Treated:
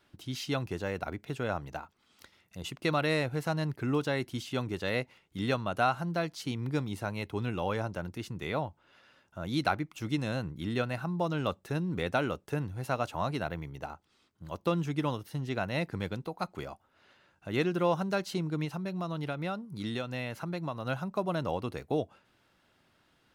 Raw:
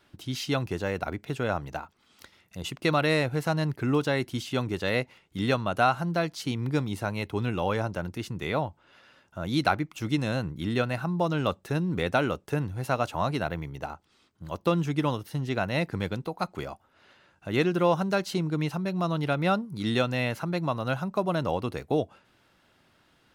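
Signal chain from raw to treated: 18.64–20.86 s: compression 5:1, threshold -27 dBFS, peak gain reduction 7.5 dB; trim -4.5 dB

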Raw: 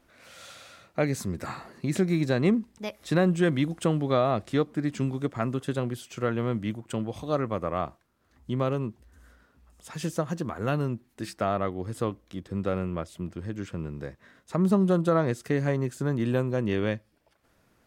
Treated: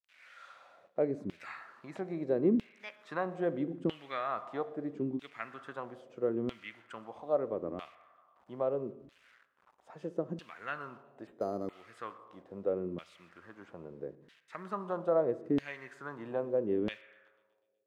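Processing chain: bit crusher 9-bit; spring tank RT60 1.3 s, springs 35/59 ms, chirp 45 ms, DRR 13 dB; LFO band-pass saw down 0.77 Hz 270–3100 Hz; feedback echo behind a high-pass 123 ms, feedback 59%, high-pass 3.1 kHz, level -22 dB; 11.27–11.73 s: decimation joined by straight lines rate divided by 8×

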